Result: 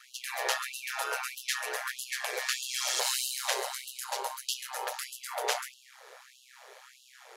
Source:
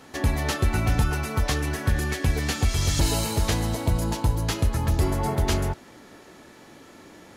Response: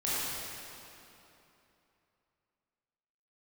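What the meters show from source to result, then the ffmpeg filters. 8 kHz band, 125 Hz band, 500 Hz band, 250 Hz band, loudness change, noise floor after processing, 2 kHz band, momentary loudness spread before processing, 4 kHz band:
-1.0 dB, under -40 dB, -8.5 dB, under -30 dB, -7.5 dB, -59 dBFS, -2.5 dB, 3 LU, -1.0 dB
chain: -af "aeval=exprs='val(0)*sin(2*PI*64*n/s)':c=same,afftfilt=real='re*gte(b*sr/1024,380*pow(2700/380,0.5+0.5*sin(2*PI*1.6*pts/sr)))':imag='im*gte(b*sr/1024,380*pow(2700/380,0.5+0.5*sin(2*PI*1.6*pts/sr)))':win_size=1024:overlap=0.75,volume=1.26"

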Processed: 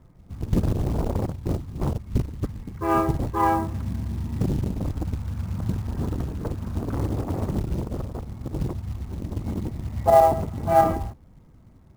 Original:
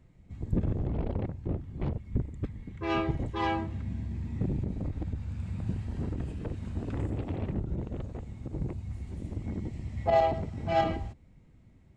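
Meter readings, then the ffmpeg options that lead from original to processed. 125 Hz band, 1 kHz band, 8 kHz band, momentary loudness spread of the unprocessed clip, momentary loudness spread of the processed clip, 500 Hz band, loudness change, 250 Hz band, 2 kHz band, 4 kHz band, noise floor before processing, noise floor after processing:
+6.0 dB, +9.5 dB, no reading, 11 LU, 13 LU, +8.0 dB, +7.5 dB, +6.5 dB, +3.0 dB, 0.0 dB, -58 dBFS, -52 dBFS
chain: -af "lowpass=f=1200:t=q:w=1.8,acrusher=bits=6:mode=log:mix=0:aa=0.000001,volume=2"

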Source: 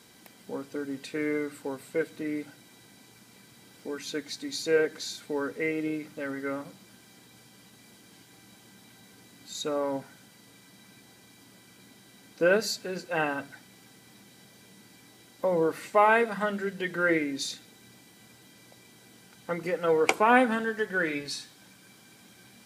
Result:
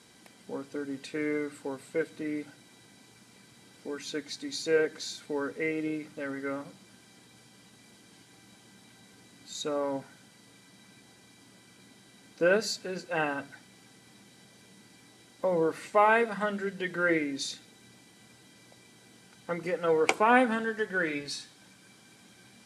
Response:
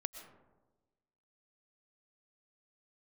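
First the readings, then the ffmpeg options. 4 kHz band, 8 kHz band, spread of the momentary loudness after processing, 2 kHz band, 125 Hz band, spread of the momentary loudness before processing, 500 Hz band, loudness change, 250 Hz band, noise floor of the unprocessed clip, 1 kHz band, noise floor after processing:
-1.5 dB, -1.5 dB, 16 LU, -1.5 dB, -1.5 dB, 16 LU, -1.5 dB, -1.5 dB, -1.5 dB, -56 dBFS, -1.5 dB, -58 dBFS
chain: -af "lowpass=f=11000:w=0.5412,lowpass=f=11000:w=1.3066,volume=0.841"

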